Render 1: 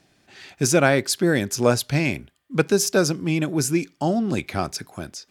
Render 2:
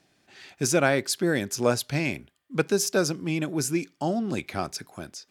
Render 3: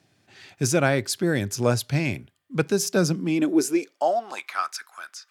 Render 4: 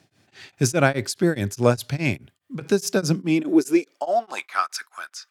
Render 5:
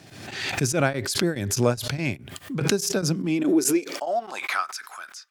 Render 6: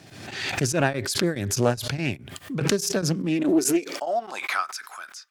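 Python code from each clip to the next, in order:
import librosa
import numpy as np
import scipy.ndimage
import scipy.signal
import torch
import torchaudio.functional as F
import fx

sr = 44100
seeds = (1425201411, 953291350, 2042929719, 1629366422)

y1 = fx.low_shelf(x, sr, hz=110.0, db=-6.5)
y1 = F.gain(torch.from_numpy(y1), -4.0).numpy()
y2 = fx.filter_sweep_highpass(y1, sr, from_hz=100.0, to_hz=1300.0, start_s=2.69, end_s=4.62, q=3.4)
y3 = y2 * np.abs(np.cos(np.pi * 4.8 * np.arange(len(y2)) / sr))
y3 = F.gain(torch.from_numpy(y3), 4.5).numpy()
y4 = fx.pre_swell(y3, sr, db_per_s=48.0)
y4 = F.gain(torch.from_numpy(y4), -4.5).numpy()
y5 = fx.doppler_dist(y4, sr, depth_ms=0.21)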